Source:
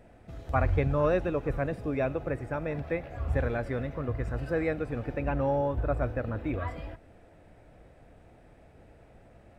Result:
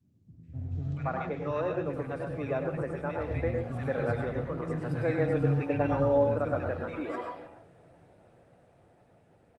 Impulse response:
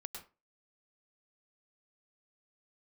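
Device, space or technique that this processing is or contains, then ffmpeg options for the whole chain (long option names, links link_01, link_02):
far-field microphone of a smart speaker: -filter_complex "[0:a]asettb=1/sr,asplit=3[link_01][link_02][link_03];[link_01]atrim=end=2.884[link_04];[link_02]atrim=start=2.88:end=3.56,asetpts=PTS-STARTPTS,afade=type=in:duration=0.004:curve=qsin,afade=type=out:start_time=0.676:duration=0.004:curve=qsin,bandreject=frequency=1000:width=10[link_05];[link_03]atrim=start=3.556[link_06];[link_04][link_05]acrossfade=duration=0.004:curve1=hsin:curve2=qsin[link_07];[link_07][link_06]acrossfade=duration=0.004:curve1=qsin:curve2=hsin,adynamicequalizer=threshold=0.01:dfrequency=670:dqfactor=1.3:tfrequency=670:tqfactor=1.3:attack=5:release=100:ratio=0.375:range=1.5:mode=cutabove:tftype=bell,asplit=3[link_08][link_09][link_10];[link_08]afade=type=out:start_time=4.73:duration=0.02[link_11];[link_09]aecho=1:1:6.6:0.94,afade=type=in:start_time=4.73:duration=0.02,afade=type=out:start_time=5.87:duration=0.02[link_12];[link_10]afade=type=in:start_time=5.87:duration=0.02[link_13];[link_11][link_12][link_13]amix=inputs=3:normalize=0,acrossover=split=260|2000[link_14][link_15][link_16];[link_16]adelay=430[link_17];[link_15]adelay=520[link_18];[link_14][link_18][link_17]amix=inputs=3:normalize=0[link_19];[1:a]atrim=start_sample=2205[link_20];[link_19][link_20]afir=irnorm=-1:irlink=0,highpass=frequency=95:width=0.5412,highpass=frequency=95:width=1.3066,dynaudnorm=framelen=270:gausssize=17:maxgain=6dB" -ar 48000 -c:a libopus -b:a 24k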